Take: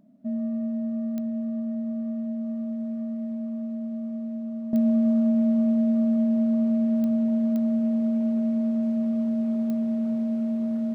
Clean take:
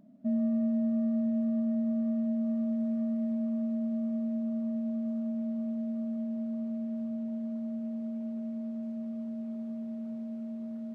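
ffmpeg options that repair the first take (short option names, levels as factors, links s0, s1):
-af "adeclick=t=4,asetnsamples=n=441:p=0,asendcmd='4.73 volume volume -12dB',volume=1"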